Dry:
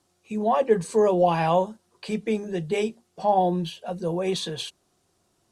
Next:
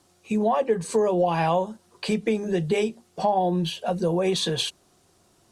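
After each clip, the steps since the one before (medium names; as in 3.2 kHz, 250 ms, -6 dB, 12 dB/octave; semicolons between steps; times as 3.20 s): compression 4:1, threshold -28 dBFS, peak gain reduction 12.5 dB; trim +7.5 dB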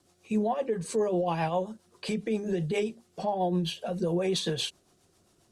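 peak limiter -16 dBFS, peak gain reduction 4.5 dB; rotary cabinet horn 7.5 Hz; trim -2 dB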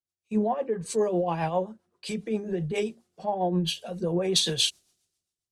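three bands expanded up and down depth 100%; trim +1 dB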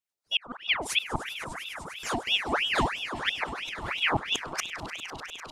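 inverted gate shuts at -17 dBFS, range -38 dB; echo with a slow build-up 100 ms, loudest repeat 5, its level -16 dB; ring modulator with a swept carrier 1.8 kHz, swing 75%, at 3 Hz; trim +4.5 dB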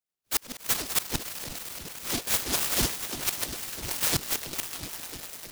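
delay time shaken by noise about 4.4 kHz, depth 0.35 ms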